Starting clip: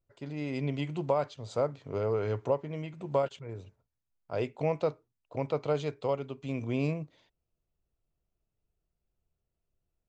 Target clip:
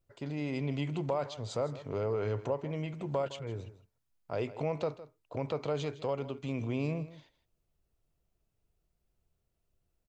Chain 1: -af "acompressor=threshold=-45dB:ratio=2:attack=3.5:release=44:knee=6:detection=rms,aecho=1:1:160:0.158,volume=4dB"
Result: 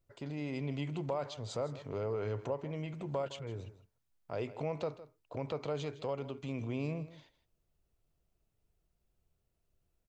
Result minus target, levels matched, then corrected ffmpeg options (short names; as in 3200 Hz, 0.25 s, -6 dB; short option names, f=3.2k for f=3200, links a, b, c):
compressor: peak gain reduction +3.5 dB
-af "acompressor=threshold=-38dB:ratio=2:attack=3.5:release=44:knee=6:detection=rms,aecho=1:1:160:0.158,volume=4dB"